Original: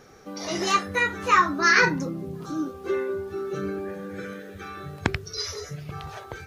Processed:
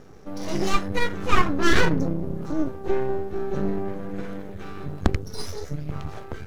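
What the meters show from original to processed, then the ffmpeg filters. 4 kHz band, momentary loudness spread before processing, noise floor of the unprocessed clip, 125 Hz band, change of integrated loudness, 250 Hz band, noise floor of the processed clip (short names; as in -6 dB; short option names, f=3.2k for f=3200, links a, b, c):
-2.0 dB, 19 LU, -43 dBFS, +6.0 dB, -2.0 dB, +4.0 dB, -38 dBFS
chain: -af "aeval=exprs='max(val(0),0)':c=same,tiltshelf=f=630:g=6.5,volume=4.5dB"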